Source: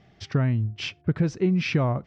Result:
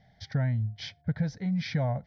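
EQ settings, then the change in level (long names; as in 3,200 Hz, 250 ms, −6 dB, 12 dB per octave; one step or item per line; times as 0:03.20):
notch filter 1,000 Hz, Q 12
phaser with its sweep stopped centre 1,800 Hz, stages 8
−2.5 dB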